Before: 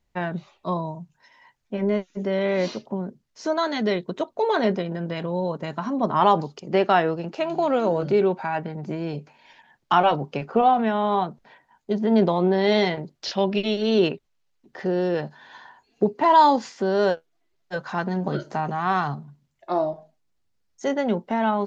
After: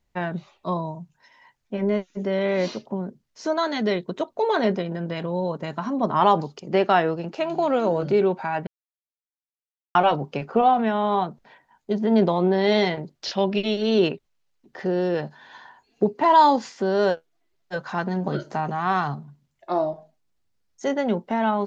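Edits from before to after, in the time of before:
0:08.67–0:09.95: silence

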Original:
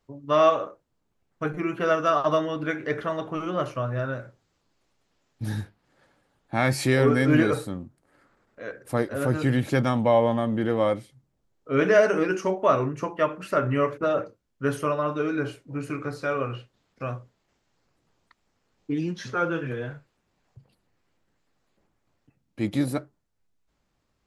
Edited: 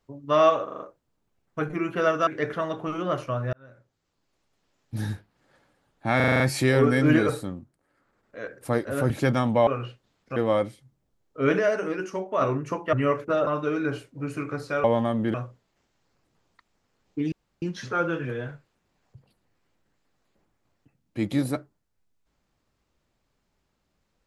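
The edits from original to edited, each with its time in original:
0:00.64: stutter 0.04 s, 5 plays
0:02.11–0:02.75: remove
0:04.01–0:05.57: fade in equal-power
0:06.64: stutter 0.04 s, 7 plays
0:07.70–0:08.63: duck −9.5 dB, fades 0.46 s
0:09.34–0:09.60: remove
0:10.17–0:10.67: swap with 0:16.37–0:17.06
0:11.90–0:12.72: clip gain −5.5 dB
0:13.24–0:13.66: remove
0:14.20–0:15.00: remove
0:19.04: splice in room tone 0.30 s

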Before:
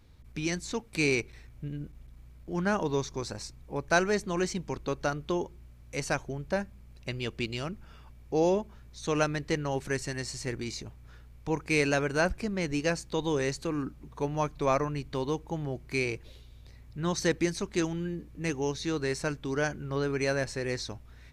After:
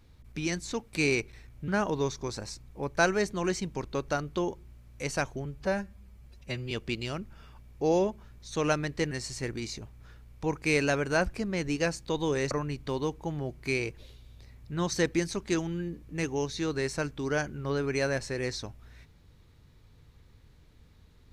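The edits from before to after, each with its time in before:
0:01.68–0:02.61: remove
0:06.38–0:07.22: time-stretch 1.5×
0:09.62–0:10.15: remove
0:13.55–0:14.77: remove

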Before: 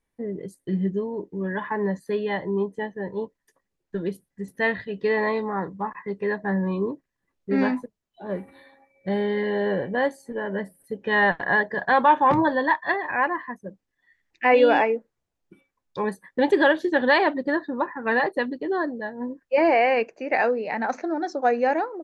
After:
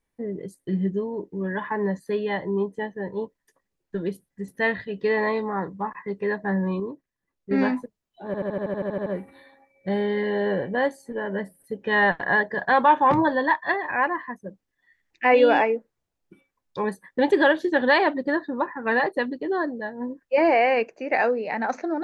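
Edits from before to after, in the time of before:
0:06.80–0:07.51: clip gain −5 dB
0:08.26: stutter 0.08 s, 11 plays

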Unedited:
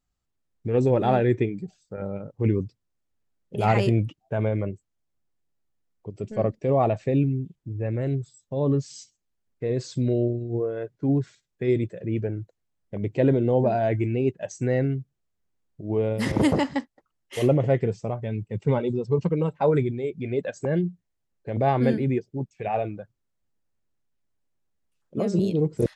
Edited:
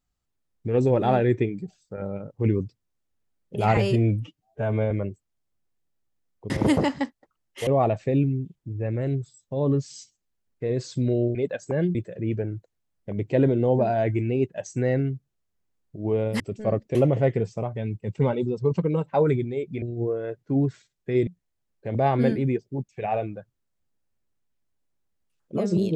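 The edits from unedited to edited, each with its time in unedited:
0:03.77–0:04.53: time-stretch 1.5×
0:06.12–0:06.67: swap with 0:16.25–0:17.42
0:10.35–0:11.80: swap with 0:20.29–0:20.89

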